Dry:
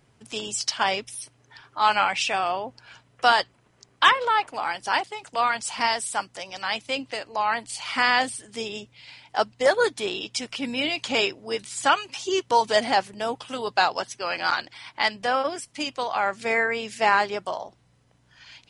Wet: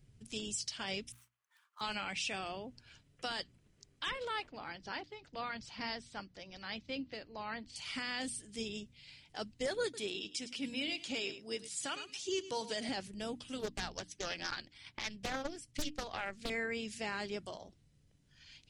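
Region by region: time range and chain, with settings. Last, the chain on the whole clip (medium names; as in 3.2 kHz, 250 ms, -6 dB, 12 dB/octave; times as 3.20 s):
1.12–1.81 s: median filter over 9 samples + ladder high-pass 970 Hz, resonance 60% + treble shelf 8.4 kHz +7.5 dB
4.47–7.76 s: low-pass 4.6 kHz 24 dB/octave + peaking EQ 2.9 kHz -5.5 dB 0.92 oct
9.83–12.89 s: high-pass 250 Hz 6 dB/octave + delay 105 ms -16 dB
13.59–16.50 s: treble shelf 6.5 kHz -4 dB + transient shaper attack +11 dB, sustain -4 dB + loudspeaker Doppler distortion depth 0.91 ms
whole clip: amplifier tone stack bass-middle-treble 10-0-1; hum notches 60/120/180/240/300 Hz; peak limiter -40 dBFS; trim +13 dB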